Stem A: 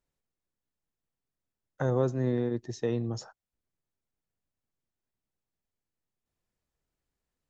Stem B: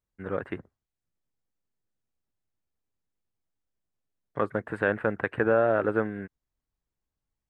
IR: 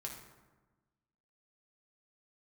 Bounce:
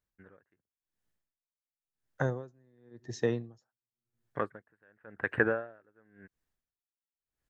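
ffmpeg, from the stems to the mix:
-filter_complex "[0:a]adelay=400,volume=1.5dB,asplit=2[a][b];[b]volume=-23dB[c];[1:a]volume=-1.5dB[d];[2:a]atrim=start_sample=2205[e];[c][e]afir=irnorm=-1:irlink=0[f];[a][d][f]amix=inputs=3:normalize=0,equalizer=f=1.7k:w=3.2:g=6.5,aeval=exprs='val(0)*pow(10,-40*(0.5-0.5*cos(2*PI*0.93*n/s))/20)':c=same"

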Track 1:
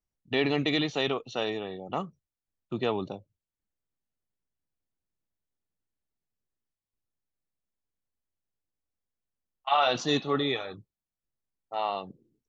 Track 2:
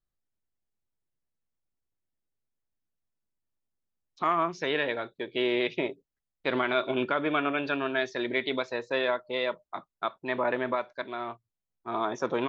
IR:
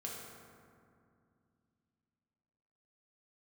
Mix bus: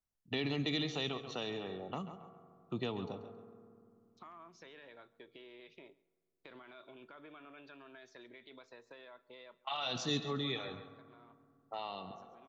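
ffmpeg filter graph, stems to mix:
-filter_complex "[0:a]volume=-5.5dB,asplit=4[a][b][c][d];[b]volume=-13.5dB[e];[c]volume=-12.5dB[f];[1:a]highshelf=f=5.8k:g=10.5,alimiter=limit=-19dB:level=0:latency=1:release=16,acompressor=threshold=-36dB:ratio=6,volume=-16.5dB,asplit=3[g][h][i];[h]volume=-22dB[j];[i]volume=-23.5dB[k];[d]apad=whole_len=550470[l];[g][l]sidechaincompress=threshold=-46dB:ratio=8:attack=16:release=1020[m];[2:a]atrim=start_sample=2205[n];[e][j]amix=inputs=2:normalize=0[o];[o][n]afir=irnorm=-1:irlink=0[p];[f][k]amix=inputs=2:normalize=0,aecho=0:1:136|272|408|544:1|0.25|0.0625|0.0156[q];[a][m][p][q]amix=inputs=4:normalize=0,equalizer=f=1.1k:w=1.5:g=2.5,acrossover=split=270|3000[r][s][t];[s]acompressor=threshold=-40dB:ratio=6[u];[r][u][t]amix=inputs=3:normalize=0"

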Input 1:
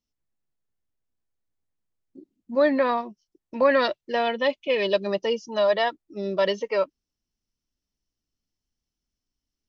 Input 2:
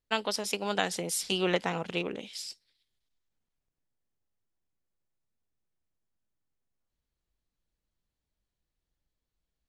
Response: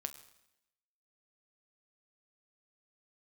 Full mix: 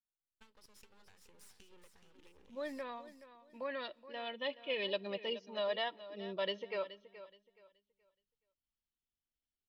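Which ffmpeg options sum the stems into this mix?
-filter_complex "[0:a]lowpass=f=3.4k:t=q:w=2.7,volume=-16.5dB,afade=t=in:st=4.14:d=0.47:silence=0.446684,asplit=3[a][b][c];[b]volume=-13.5dB[d];[c]volume=-13.5dB[e];[1:a]acompressor=threshold=-34dB:ratio=6,aeval=exprs='max(val(0),0)':c=same,equalizer=f=680:w=5.4:g=-13,adelay=300,volume=-19dB,asplit=2[f][g];[g]volume=-8.5dB[h];[2:a]atrim=start_sample=2205[i];[d][i]afir=irnorm=-1:irlink=0[j];[e][h]amix=inputs=2:normalize=0,aecho=0:1:424|848|1272|1696:1|0.26|0.0676|0.0176[k];[a][f][j][k]amix=inputs=4:normalize=0"

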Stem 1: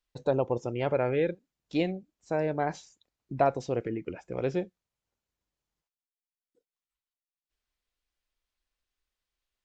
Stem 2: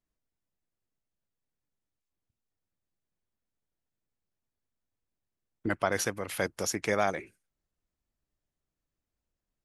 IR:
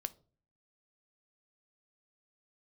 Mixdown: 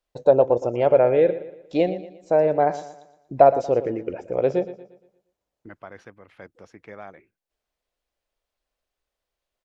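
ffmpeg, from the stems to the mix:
-filter_complex "[0:a]equalizer=f=590:w=1.1:g=12.5,volume=0.5dB,asplit=2[a][b];[b]volume=-14dB[c];[1:a]lowpass=2.3k,volume=-12.5dB[d];[c]aecho=0:1:117|234|351|468|585|702:1|0.41|0.168|0.0689|0.0283|0.0116[e];[a][d][e]amix=inputs=3:normalize=0"

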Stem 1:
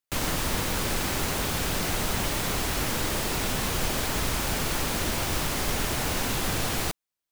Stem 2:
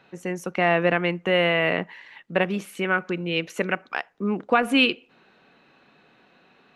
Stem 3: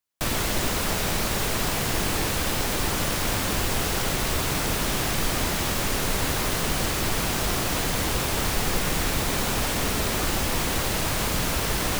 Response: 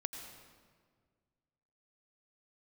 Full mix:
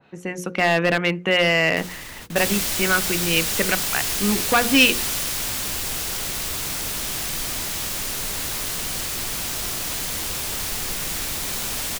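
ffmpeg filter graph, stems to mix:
-filter_complex "[0:a]alimiter=limit=-23dB:level=0:latency=1:release=30,adelay=1650,volume=-8dB[a];[1:a]lowshelf=f=180:g=6.5,volume=1dB,asplit=2[b][c];[2:a]highshelf=f=3.3k:g=8.5,adelay=2150,volume=-8dB[d];[c]apad=whole_len=395231[e];[a][e]sidechaingate=range=-33dB:threshold=-49dB:ratio=16:detection=peak[f];[f][b][d]amix=inputs=3:normalize=0,bandreject=f=60:t=h:w=6,bandreject=f=120:t=h:w=6,bandreject=f=180:t=h:w=6,bandreject=f=240:t=h:w=6,bandreject=f=300:t=h:w=6,bandreject=f=360:t=h:w=6,bandreject=f=420:t=h:w=6,bandreject=f=480:t=h:w=6,bandreject=f=540:t=h:w=6,aeval=exprs='clip(val(0),-1,0.237)':c=same,adynamicequalizer=threshold=0.0141:dfrequency=1600:dqfactor=0.7:tfrequency=1600:tqfactor=0.7:attack=5:release=100:ratio=0.375:range=3:mode=boostabove:tftype=highshelf"

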